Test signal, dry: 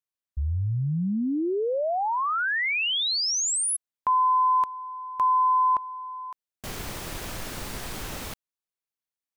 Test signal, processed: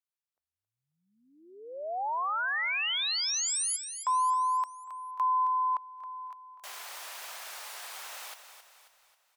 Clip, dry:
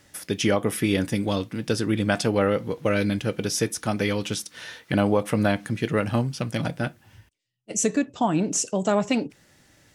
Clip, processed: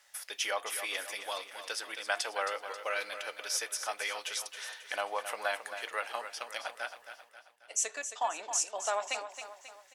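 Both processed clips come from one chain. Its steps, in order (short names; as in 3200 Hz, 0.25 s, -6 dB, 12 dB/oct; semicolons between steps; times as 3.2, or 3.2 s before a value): HPF 700 Hz 24 dB/oct; on a send: feedback echo 0.269 s, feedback 48%, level -10 dB; on the sum: gain -5 dB; AC-3 96 kbps 44100 Hz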